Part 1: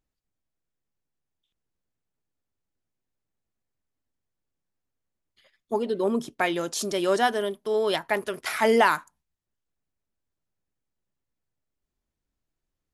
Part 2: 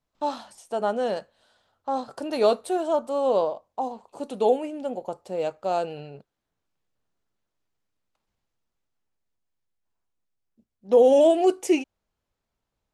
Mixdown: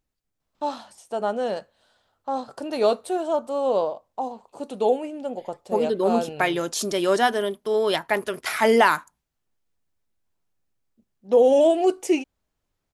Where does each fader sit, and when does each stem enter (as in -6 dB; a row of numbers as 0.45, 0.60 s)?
+2.5, 0.0 dB; 0.00, 0.40 s